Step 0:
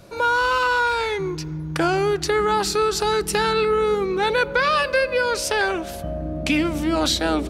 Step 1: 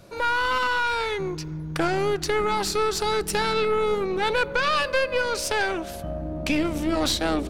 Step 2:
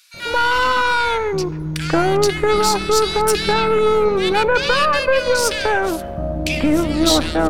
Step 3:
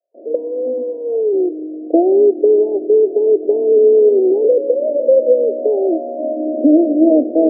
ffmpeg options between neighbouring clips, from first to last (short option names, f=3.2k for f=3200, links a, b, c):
-af "aeval=exprs='(tanh(5.01*val(0)+0.6)-tanh(0.6))/5.01':c=same"
-filter_complex "[0:a]acrossover=split=1900[a][b];[a]adelay=140[c];[c][b]amix=inputs=2:normalize=0,volume=8dB"
-af "asuperpass=centerf=410:order=20:qfactor=0.92,volume=6.5dB"